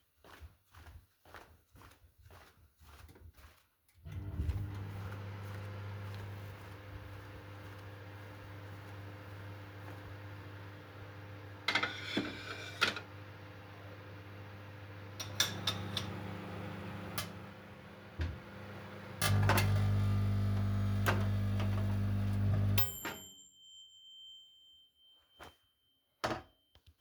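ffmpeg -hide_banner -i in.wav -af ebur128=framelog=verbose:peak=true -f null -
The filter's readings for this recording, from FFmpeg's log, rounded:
Integrated loudness:
  I:         -36.9 LUFS
  Threshold: -49.5 LUFS
Loudness range:
  LRA:        16.0 LU
  Threshold: -59.1 LUFS
  LRA low:   -49.6 LUFS
  LRA high:  -33.6 LUFS
True peak:
  Peak:      -14.0 dBFS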